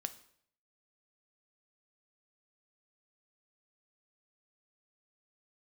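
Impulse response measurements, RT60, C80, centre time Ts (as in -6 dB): 0.65 s, 18.5 dB, 5 ms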